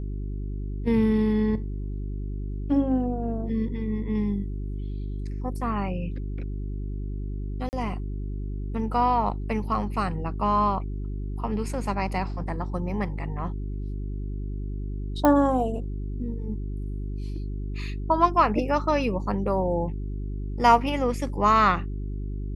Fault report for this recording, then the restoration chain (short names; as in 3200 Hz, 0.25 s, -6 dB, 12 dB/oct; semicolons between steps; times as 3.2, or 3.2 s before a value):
hum 50 Hz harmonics 8 -31 dBFS
7.69–7.73 gap 39 ms
15.25 pop -9 dBFS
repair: de-click; de-hum 50 Hz, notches 8; interpolate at 7.69, 39 ms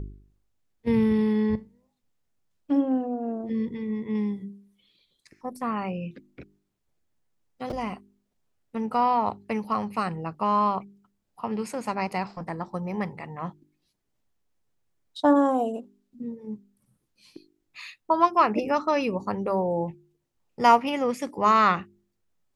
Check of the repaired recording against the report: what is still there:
none